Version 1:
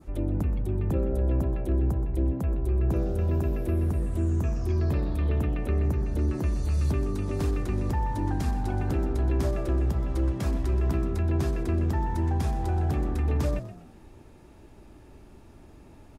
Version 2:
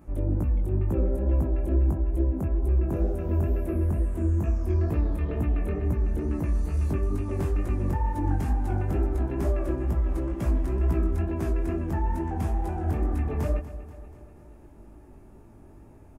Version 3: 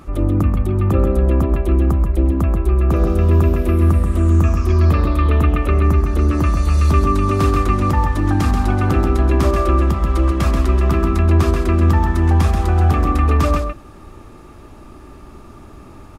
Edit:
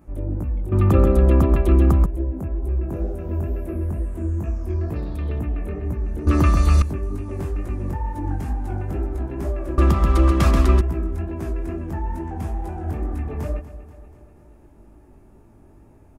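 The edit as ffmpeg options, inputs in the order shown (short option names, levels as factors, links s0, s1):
-filter_complex "[2:a]asplit=3[s0][s1][s2];[1:a]asplit=5[s3][s4][s5][s6][s7];[s3]atrim=end=0.722[s8];[s0]atrim=start=0.718:end=2.062[s9];[s4]atrim=start=2.058:end=4.962[s10];[0:a]atrim=start=4.958:end=5.392[s11];[s5]atrim=start=5.388:end=6.272[s12];[s1]atrim=start=6.268:end=6.822[s13];[s6]atrim=start=6.818:end=9.782[s14];[s2]atrim=start=9.778:end=10.812[s15];[s7]atrim=start=10.808[s16];[s8][s9]acrossfade=d=0.004:c1=hsin:c2=hsin[s17];[s17][s10]acrossfade=d=0.004:c1=hsin:c2=hsin[s18];[s18][s11]acrossfade=d=0.004:c1=hsin:c2=hsin[s19];[s19][s12]acrossfade=d=0.004:c1=hsin:c2=hsin[s20];[s20][s13]acrossfade=d=0.004:c1=hsin:c2=hsin[s21];[s21][s14]acrossfade=d=0.004:c1=hsin:c2=hsin[s22];[s22][s15]acrossfade=d=0.004:c1=hsin:c2=hsin[s23];[s23][s16]acrossfade=d=0.004:c1=hsin:c2=hsin"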